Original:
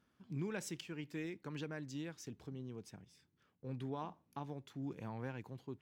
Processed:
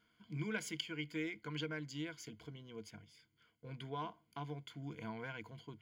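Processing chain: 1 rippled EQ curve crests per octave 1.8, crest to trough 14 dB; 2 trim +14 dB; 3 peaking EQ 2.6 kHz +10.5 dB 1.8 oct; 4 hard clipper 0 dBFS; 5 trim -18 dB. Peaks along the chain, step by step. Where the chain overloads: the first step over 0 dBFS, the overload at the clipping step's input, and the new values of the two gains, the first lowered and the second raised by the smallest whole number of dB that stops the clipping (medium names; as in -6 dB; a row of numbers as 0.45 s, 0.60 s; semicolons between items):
-26.5 dBFS, -12.5 dBFS, -5.0 dBFS, -5.0 dBFS, -23.0 dBFS; nothing clips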